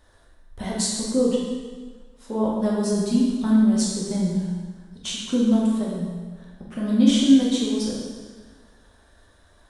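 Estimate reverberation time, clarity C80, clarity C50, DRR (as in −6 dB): 1.5 s, 2.0 dB, 0.0 dB, −5.0 dB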